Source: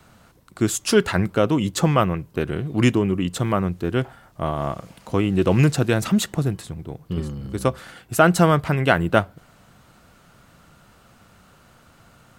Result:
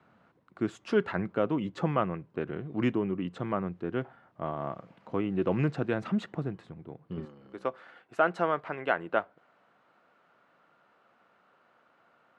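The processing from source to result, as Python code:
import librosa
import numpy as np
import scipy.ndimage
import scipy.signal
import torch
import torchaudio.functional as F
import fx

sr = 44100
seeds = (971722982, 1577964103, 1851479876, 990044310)

y = fx.bandpass_edges(x, sr, low_hz=fx.steps((0.0, 160.0), (7.25, 400.0)), high_hz=2100.0)
y = y * librosa.db_to_amplitude(-8.5)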